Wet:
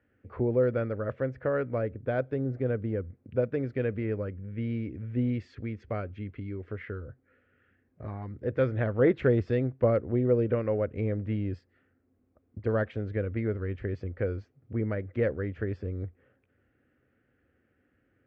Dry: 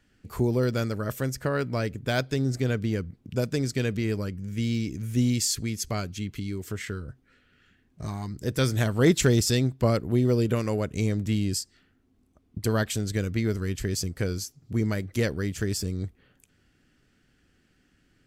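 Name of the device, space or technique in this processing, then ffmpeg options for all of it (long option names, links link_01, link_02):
bass cabinet: -filter_complex "[0:a]asettb=1/sr,asplit=3[link_01][link_02][link_03];[link_01]atrim=end=1.784[link_04];[link_02]atrim=start=1.78:end=3.05,asetpts=PTS-STARTPTS,afade=type=in:duration=0.004:curve=qsin,afade=type=out:start_time=1.266:duration=0.004:curve=qsin,equalizer=frequency=2300:width_type=o:width=1.7:gain=-5[link_05];[link_03]atrim=start=3.046[link_06];[link_04][link_05]acrossfade=duration=0.004:curve1=hsin:curve2=qsin[link_07];[link_07][link_06]acrossfade=duration=0.004:curve1=qsin:curve2=hsin,highpass=77,equalizer=frequency=87:width_type=q:width=4:gain=4,equalizer=frequency=170:width_type=q:width=4:gain=-10,equalizer=frequency=520:width_type=q:width=4:gain=9,equalizer=frequency=970:width_type=q:width=4:gain=-4,lowpass=frequency=2100:width=0.5412,lowpass=frequency=2100:width=1.3066,volume=-3.5dB"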